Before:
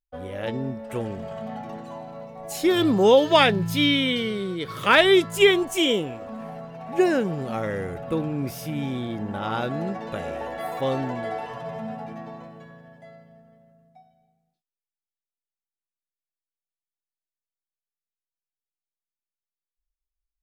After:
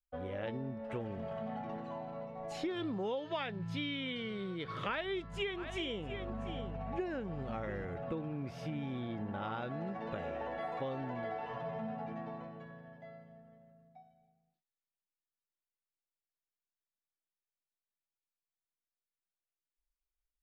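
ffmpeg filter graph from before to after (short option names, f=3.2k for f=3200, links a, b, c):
-filter_complex "[0:a]asettb=1/sr,asplit=3[a][b][c];[a]atrim=end=4.884[d];[b]atrim=start=4.88:end=7.85,asetpts=PTS-STARTPTS,afade=t=in:d=0.004:c=qsin,afade=t=out:st=2.966:d=0.004:c=qsin,aeval=exprs='val(0)+0.0178*(sin(2*PI*50*n/s)+sin(2*PI*2*50*n/s)/2+sin(2*PI*3*50*n/s)/3+sin(2*PI*4*50*n/s)/4+sin(2*PI*5*50*n/s)/5)':c=same,aecho=1:1:690:0.133,atrim=end_sample=130977[e];[c]atrim=start=7.846[f];[d][e]acrossfade=d=0.004:c1=hsin:c2=qsin[g];[g][f]acrossfade=d=0.004:c1=qsin:c2=hsin,lowpass=3.2k,adynamicequalizer=threshold=0.0251:dfrequency=360:dqfactor=0.94:tfrequency=360:tqfactor=0.94:attack=5:release=100:ratio=0.375:range=2.5:mode=cutabove:tftype=bell,acompressor=threshold=-31dB:ratio=5,volume=-5dB"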